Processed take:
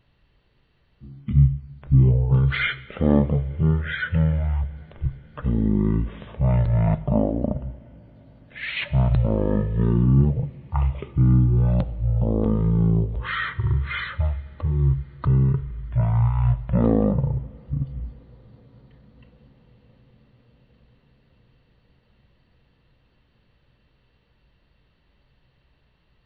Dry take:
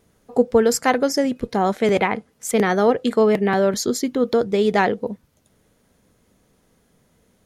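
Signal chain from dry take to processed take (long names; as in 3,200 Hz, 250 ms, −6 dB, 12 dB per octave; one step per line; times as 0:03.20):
coupled-rooms reverb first 0.43 s, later 4.1 s, from −18 dB, DRR 16.5 dB
change of speed 0.284×
level −2 dB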